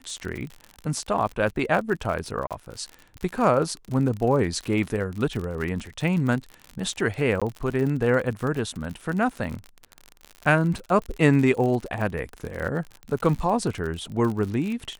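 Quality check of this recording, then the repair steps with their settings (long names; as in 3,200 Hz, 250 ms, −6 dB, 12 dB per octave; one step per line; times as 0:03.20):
surface crackle 50 per second −29 dBFS
0:02.47–0:02.51: drop-out 37 ms
0:07.40–0:07.42: drop-out 16 ms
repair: click removal
repair the gap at 0:02.47, 37 ms
repair the gap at 0:07.40, 16 ms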